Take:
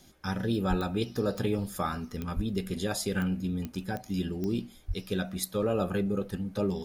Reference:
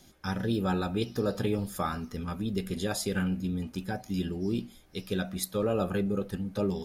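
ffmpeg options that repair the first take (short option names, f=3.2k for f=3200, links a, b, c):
-filter_complex "[0:a]adeclick=t=4,asplit=3[a][b][c];[a]afade=t=out:st=0.69:d=0.02[d];[b]highpass=f=140:w=0.5412,highpass=f=140:w=1.3066,afade=t=in:st=0.69:d=0.02,afade=t=out:st=0.81:d=0.02[e];[c]afade=t=in:st=0.81:d=0.02[f];[d][e][f]amix=inputs=3:normalize=0,asplit=3[g][h][i];[g]afade=t=out:st=2.35:d=0.02[j];[h]highpass=f=140:w=0.5412,highpass=f=140:w=1.3066,afade=t=in:st=2.35:d=0.02,afade=t=out:st=2.47:d=0.02[k];[i]afade=t=in:st=2.47:d=0.02[l];[j][k][l]amix=inputs=3:normalize=0,asplit=3[m][n][o];[m]afade=t=out:st=4.87:d=0.02[p];[n]highpass=f=140:w=0.5412,highpass=f=140:w=1.3066,afade=t=in:st=4.87:d=0.02,afade=t=out:st=4.99:d=0.02[q];[o]afade=t=in:st=4.99:d=0.02[r];[p][q][r]amix=inputs=3:normalize=0"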